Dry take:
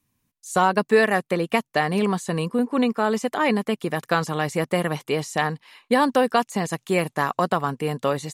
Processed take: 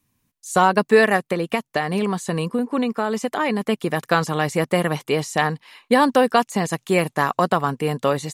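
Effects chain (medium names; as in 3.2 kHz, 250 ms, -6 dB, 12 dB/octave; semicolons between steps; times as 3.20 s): 1.16–3.61 s: compression 3:1, threshold -22 dBFS, peak gain reduction 6 dB; trim +3 dB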